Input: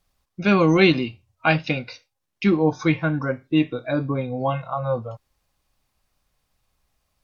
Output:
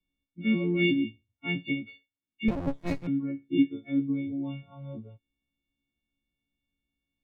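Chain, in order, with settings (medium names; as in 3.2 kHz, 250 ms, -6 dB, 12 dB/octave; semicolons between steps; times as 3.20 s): partials quantised in pitch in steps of 4 st; cascade formant filter i; 2.48–3.07 s: sliding maximum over 65 samples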